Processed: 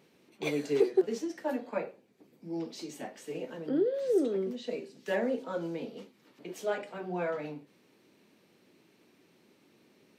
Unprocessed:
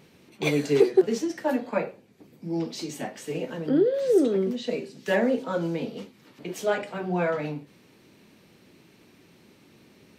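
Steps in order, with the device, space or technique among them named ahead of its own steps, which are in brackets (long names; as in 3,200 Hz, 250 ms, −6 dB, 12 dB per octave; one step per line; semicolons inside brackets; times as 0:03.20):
filter by subtraction (in parallel: low-pass filter 350 Hz 12 dB per octave + polarity inversion)
on the sum: level −8.5 dB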